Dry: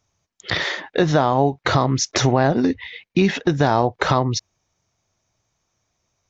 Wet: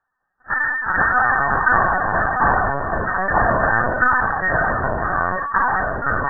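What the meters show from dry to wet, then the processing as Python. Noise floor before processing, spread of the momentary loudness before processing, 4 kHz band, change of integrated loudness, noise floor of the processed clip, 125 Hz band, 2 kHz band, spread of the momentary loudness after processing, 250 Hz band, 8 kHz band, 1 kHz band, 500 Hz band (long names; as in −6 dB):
−74 dBFS, 7 LU, below −40 dB, +1.5 dB, −75 dBFS, −6.0 dB, +11.5 dB, 5 LU, −8.0 dB, can't be measured, +6.0 dB, −2.5 dB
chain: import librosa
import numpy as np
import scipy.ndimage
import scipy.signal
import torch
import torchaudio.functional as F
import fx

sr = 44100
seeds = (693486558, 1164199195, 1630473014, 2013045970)

p1 = fx.lower_of_two(x, sr, delay_ms=4.0)
p2 = scipy.signal.sosfilt(scipy.signal.butter(2, 1500.0, 'highpass', fs=sr, output='sos'), p1)
p3 = fx.rider(p2, sr, range_db=4, speed_s=0.5)
p4 = p2 + (p3 * librosa.db_to_amplitude(1.0))
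p5 = fx.echo_pitch(p4, sr, ms=193, semitones=-5, count=3, db_per_echo=-3.0)
p6 = fx.brickwall_lowpass(p5, sr, high_hz=1900.0)
p7 = fx.lpc_vocoder(p6, sr, seeds[0], excitation='pitch_kept', order=10)
p8 = fx.sustainer(p7, sr, db_per_s=27.0)
y = p8 * librosa.db_to_amplitude(6.0)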